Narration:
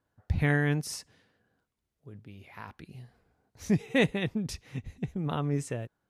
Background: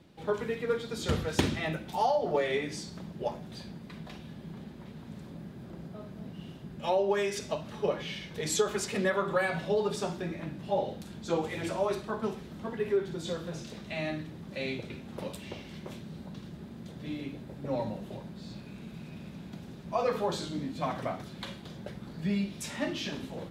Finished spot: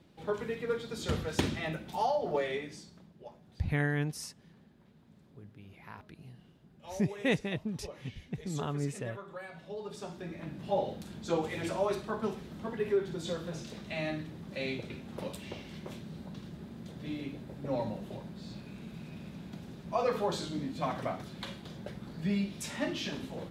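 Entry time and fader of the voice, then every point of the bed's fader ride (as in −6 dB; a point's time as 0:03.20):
3.30 s, −4.5 dB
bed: 0:02.42 −3 dB
0:03.14 −16 dB
0:09.54 −16 dB
0:10.64 −1 dB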